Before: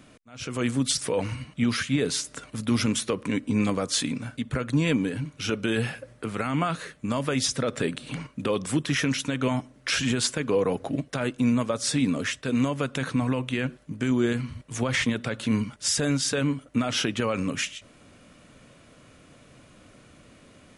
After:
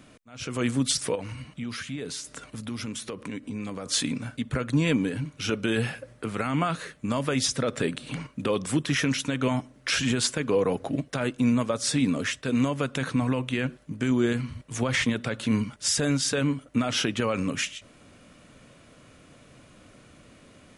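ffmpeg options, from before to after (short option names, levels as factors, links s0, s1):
-filter_complex "[0:a]asettb=1/sr,asplit=3[s0][s1][s2];[s0]atrim=end=1.154[s3];[s1]atrim=start=1.15:end=3.86,asetpts=PTS-STARTPTS,afade=t=in:d=0.004:c=qsin,afade=t=out:st=2.706:d=0.004:c=qsin,acompressor=threshold=0.0178:ratio=2.5:attack=3.2:release=140:knee=1:detection=peak[s4];[s2]atrim=start=3.856[s5];[s3][s4]acrossfade=d=0.004:c1=hsin:c2=qsin[s6];[s6][s5]acrossfade=d=0.004:c1=qsin:c2=hsin"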